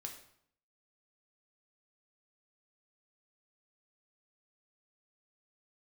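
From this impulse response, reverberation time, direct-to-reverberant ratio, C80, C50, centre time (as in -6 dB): 0.65 s, 2.0 dB, 11.0 dB, 8.0 dB, 20 ms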